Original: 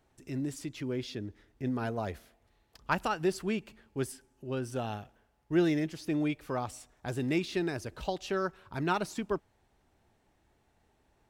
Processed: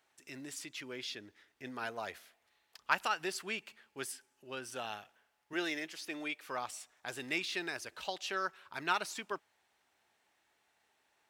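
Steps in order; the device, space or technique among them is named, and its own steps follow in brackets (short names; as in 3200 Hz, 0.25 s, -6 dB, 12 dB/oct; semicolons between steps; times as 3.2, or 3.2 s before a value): 5.53–6.47 HPF 230 Hz 12 dB/oct; filter by subtraction (in parallel: LPF 2100 Hz 12 dB/oct + phase invert); on the sum: gain +1 dB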